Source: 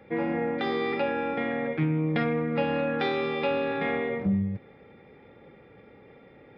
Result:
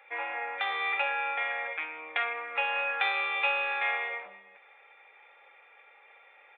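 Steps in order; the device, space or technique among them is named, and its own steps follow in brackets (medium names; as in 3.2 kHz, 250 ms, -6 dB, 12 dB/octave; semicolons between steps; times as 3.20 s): musical greeting card (resampled via 8 kHz; high-pass 780 Hz 24 dB/octave; peaking EQ 2.5 kHz +8 dB 0.23 oct); trim +2 dB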